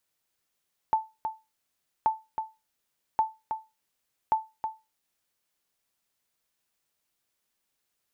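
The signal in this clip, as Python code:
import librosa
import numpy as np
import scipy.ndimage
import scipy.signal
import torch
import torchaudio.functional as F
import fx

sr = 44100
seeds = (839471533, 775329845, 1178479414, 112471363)

y = fx.sonar_ping(sr, hz=880.0, decay_s=0.24, every_s=1.13, pings=4, echo_s=0.32, echo_db=-7.5, level_db=-15.5)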